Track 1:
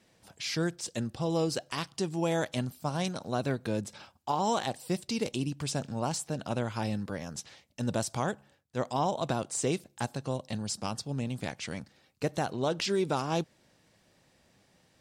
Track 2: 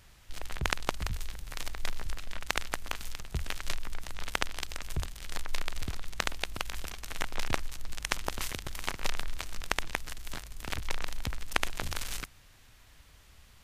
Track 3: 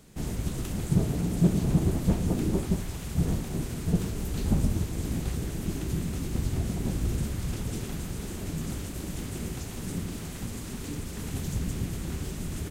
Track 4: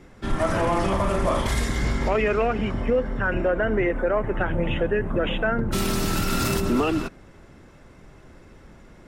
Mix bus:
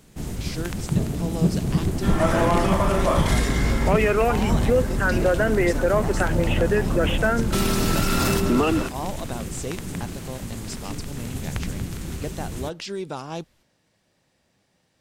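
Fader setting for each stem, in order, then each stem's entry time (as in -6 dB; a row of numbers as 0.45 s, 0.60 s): -2.5 dB, -9.0 dB, +1.5 dB, +2.0 dB; 0.00 s, 0.00 s, 0.00 s, 1.80 s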